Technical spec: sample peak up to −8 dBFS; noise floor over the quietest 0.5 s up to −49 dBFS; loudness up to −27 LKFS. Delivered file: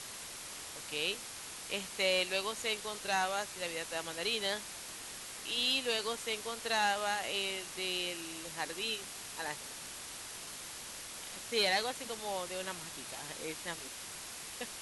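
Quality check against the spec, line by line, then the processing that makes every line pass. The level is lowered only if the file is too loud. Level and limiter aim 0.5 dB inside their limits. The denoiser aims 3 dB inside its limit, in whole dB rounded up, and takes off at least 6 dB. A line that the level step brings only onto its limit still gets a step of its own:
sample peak −18.0 dBFS: in spec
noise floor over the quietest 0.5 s −46 dBFS: out of spec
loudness −36.0 LKFS: in spec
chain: broadband denoise 6 dB, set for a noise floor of −46 dBFS

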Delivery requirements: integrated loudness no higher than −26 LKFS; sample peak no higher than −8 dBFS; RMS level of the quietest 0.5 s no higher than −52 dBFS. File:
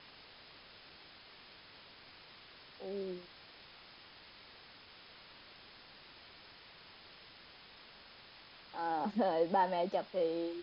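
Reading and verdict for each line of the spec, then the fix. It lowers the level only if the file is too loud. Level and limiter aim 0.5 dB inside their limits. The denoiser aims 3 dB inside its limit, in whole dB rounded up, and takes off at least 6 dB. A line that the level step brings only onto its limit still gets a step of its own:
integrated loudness −36.0 LKFS: in spec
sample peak −20.0 dBFS: in spec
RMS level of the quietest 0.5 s −57 dBFS: in spec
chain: no processing needed

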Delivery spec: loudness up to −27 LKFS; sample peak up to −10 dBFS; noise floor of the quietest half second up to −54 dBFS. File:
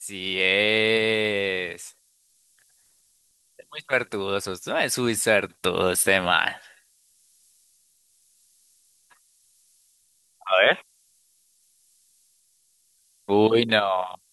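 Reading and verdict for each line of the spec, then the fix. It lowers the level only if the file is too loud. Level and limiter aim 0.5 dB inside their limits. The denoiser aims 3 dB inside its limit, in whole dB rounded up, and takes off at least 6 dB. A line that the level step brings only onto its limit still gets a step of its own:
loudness −22.0 LKFS: out of spec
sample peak −4.5 dBFS: out of spec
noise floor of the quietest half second −65 dBFS: in spec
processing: level −5.5 dB
brickwall limiter −10.5 dBFS

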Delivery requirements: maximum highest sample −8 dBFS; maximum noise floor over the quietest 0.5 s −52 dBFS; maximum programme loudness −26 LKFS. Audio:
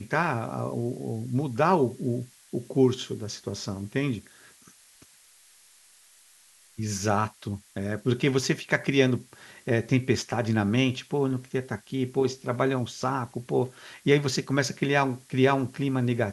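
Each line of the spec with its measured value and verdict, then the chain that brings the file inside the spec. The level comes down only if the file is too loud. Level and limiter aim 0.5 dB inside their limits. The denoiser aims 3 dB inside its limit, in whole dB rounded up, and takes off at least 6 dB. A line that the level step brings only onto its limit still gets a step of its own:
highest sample −7.0 dBFS: out of spec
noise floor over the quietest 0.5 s −57 dBFS: in spec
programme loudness −27.0 LKFS: in spec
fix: brickwall limiter −8.5 dBFS

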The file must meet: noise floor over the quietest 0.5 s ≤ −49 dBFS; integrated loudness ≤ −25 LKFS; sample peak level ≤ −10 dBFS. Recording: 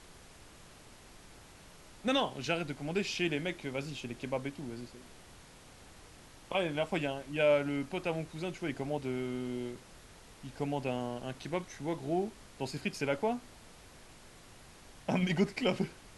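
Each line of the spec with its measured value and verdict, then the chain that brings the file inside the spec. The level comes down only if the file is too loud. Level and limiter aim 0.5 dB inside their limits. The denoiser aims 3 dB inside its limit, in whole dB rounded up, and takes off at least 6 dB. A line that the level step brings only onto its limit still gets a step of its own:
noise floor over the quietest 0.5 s −55 dBFS: in spec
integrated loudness −35.0 LKFS: in spec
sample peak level −16.0 dBFS: in spec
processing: no processing needed

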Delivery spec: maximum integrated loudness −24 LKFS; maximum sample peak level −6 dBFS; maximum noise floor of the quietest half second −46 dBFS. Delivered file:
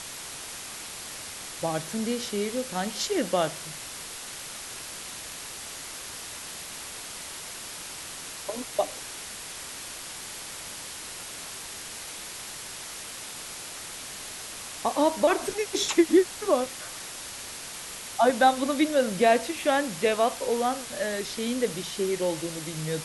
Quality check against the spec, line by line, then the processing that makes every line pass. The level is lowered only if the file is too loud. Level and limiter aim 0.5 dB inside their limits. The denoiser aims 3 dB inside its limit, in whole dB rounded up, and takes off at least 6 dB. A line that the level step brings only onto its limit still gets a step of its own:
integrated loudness −29.5 LKFS: in spec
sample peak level −9.0 dBFS: in spec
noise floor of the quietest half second −39 dBFS: out of spec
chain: broadband denoise 10 dB, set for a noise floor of −39 dBFS

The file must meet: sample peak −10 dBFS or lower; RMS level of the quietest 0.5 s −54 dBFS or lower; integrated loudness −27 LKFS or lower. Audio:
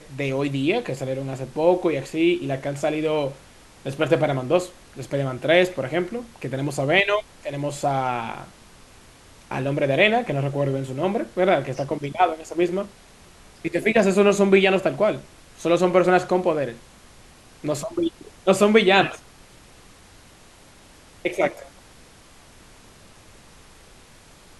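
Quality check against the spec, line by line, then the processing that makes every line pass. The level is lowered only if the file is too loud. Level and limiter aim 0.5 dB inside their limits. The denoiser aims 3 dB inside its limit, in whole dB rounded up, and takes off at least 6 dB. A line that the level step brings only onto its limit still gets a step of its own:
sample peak −2.0 dBFS: out of spec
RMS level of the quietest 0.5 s −49 dBFS: out of spec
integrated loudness −22.0 LKFS: out of spec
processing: level −5.5 dB
brickwall limiter −10.5 dBFS

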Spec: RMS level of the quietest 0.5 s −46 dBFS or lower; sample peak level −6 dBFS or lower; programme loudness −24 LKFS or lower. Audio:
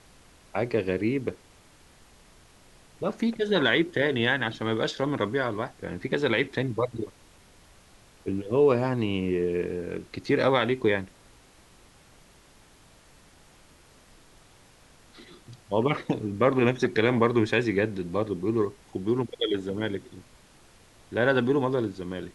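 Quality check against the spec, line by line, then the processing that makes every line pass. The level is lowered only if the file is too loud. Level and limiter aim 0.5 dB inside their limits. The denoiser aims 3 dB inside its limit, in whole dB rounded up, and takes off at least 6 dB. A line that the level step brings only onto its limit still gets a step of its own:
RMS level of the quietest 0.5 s −56 dBFS: in spec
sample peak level −8.5 dBFS: in spec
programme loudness −26.5 LKFS: in spec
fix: no processing needed

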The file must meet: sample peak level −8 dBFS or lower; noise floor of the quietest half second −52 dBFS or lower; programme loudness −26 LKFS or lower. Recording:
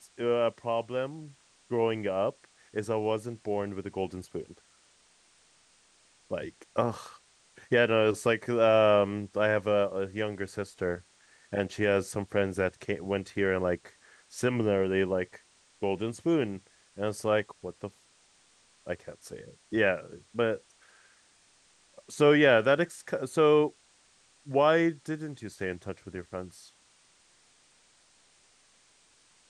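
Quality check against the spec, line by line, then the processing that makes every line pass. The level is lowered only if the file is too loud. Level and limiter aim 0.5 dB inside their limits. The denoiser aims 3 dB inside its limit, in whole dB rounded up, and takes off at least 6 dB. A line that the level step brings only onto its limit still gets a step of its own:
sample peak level −10.5 dBFS: in spec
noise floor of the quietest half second −64 dBFS: in spec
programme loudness −29.0 LKFS: in spec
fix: no processing needed

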